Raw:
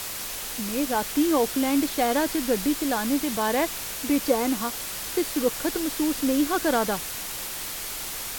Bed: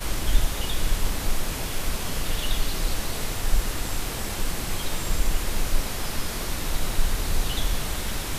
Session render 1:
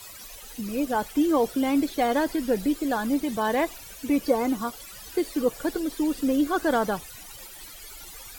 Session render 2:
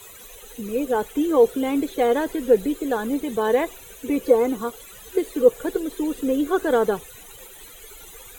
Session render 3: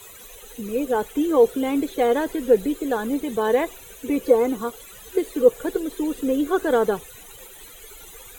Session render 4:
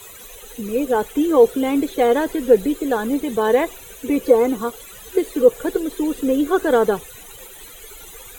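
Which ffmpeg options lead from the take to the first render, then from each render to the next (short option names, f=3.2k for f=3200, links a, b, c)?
-af "afftdn=nr=16:nf=-34"
-af "superequalizer=7b=3.16:14b=0.282"
-af anull
-af "volume=3.5dB,alimiter=limit=-2dB:level=0:latency=1"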